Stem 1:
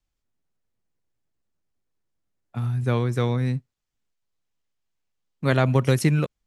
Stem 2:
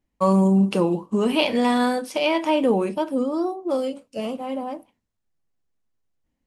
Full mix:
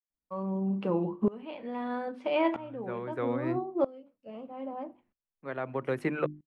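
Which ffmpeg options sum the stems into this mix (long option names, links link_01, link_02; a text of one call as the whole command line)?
ffmpeg -i stem1.wav -i stem2.wav -filter_complex "[0:a]acrossover=split=270 2300:gain=0.141 1 0.0708[link_01][link_02][link_03];[link_01][link_02][link_03]amix=inputs=3:normalize=0,dynaudnorm=framelen=110:gausssize=5:maxgain=12.5dB,volume=-6dB[link_04];[1:a]lowpass=2000,adelay=100,volume=-1.5dB[link_05];[link_04][link_05]amix=inputs=2:normalize=0,equalizer=frequency=5700:width=3:gain=-6,bandreject=frequency=50:width_type=h:width=6,bandreject=frequency=100:width_type=h:width=6,bandreject=frequency=150:width_type=h:width=6,bandreject=frequency=200:width_type=h:width=6,bandreject=frequency=250:width_type=h:width=6,bandreject=frequency=300:width_type=h:width=6,bandreject=frequency=350:width_type=h:width=6,aeval=exprs='val(0)*pow(10,-22*if(lt(mod(-0.78*n/s,1),2*abs(-0.78)/1000),1-mod(-0.78*n/s,1)/(2*abs(-0.78)/1000),(mod(-0.78*n/s,1)-2*abs(-0.78)/1000)/(1-2*abs(-0.78)/1000))/20)':channel_layout=same" out.wav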